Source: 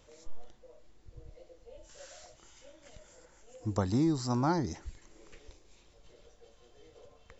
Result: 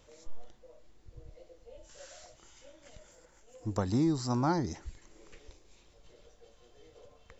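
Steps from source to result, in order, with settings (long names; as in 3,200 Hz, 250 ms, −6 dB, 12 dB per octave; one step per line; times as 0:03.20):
0:03.11–0:03.87: gain on one half-wave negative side −3 dB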